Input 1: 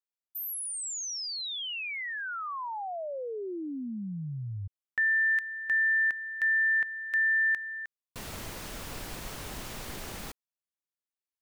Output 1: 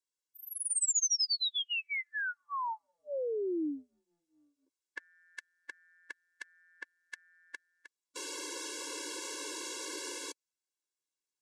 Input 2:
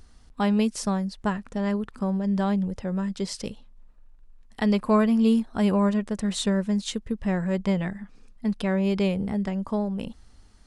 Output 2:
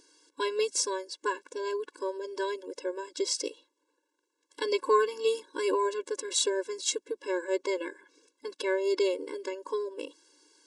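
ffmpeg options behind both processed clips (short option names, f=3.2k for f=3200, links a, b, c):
-af "lowpass=f=8.7k:w=0.5412,lowpass=f=8.7k:w=1.3066,bass=f=250:g=7,treble=f=4k:g=9,afftfilt=real='re*eq(mod(floor(b*sr/1024/290),2),1)':imag='im*eq(mod(floor(b*sr/1024/290),2),1)':win_size=1024:overlap=0.75,volume=1.5dB"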